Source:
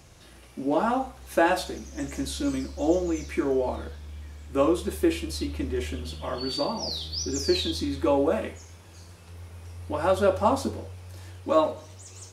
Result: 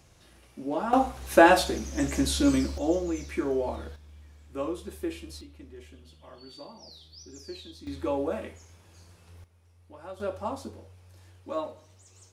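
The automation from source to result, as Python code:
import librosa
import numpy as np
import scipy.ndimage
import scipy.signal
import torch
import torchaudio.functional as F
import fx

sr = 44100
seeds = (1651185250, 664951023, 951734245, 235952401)

y = fx.gain(x, sr, db=fx.steps((0.0, -6.0), (0.93, 5.0), (2.78, -3.0), (3.96, -10.0), (5.41, -17.5), (7.87, -6.5), (9.44, -19.0), (10.2, -11.0)))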